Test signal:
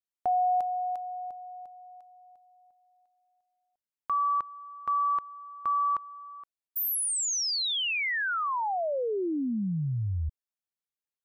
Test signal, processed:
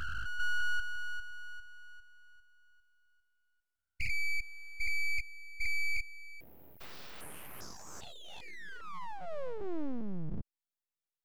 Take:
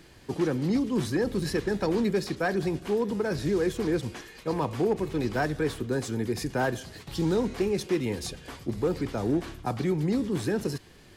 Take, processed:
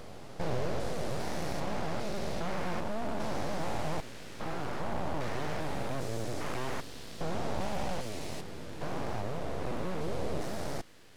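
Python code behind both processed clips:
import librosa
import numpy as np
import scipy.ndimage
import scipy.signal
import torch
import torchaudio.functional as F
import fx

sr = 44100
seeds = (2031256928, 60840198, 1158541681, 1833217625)

y = fx.spec_steps(x, sr, hold_ms=400)
y = np.abs(y)
y = fx.doppler_dist(y, sr, depth_ms=0.47)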